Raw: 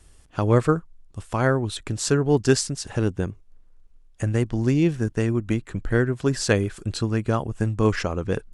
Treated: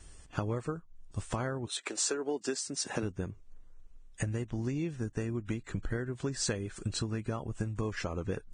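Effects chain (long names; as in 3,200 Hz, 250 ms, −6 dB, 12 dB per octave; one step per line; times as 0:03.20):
0:01.65–0:03.02: high-pass filter 460 Hz → 160 Hz 24 dB per octave
downward compressor 16 to 1, threshold −30 dBFS, peak gain reduction 18.5 dB
Ogg Vorbis 16 kbit/s 22,050 Hz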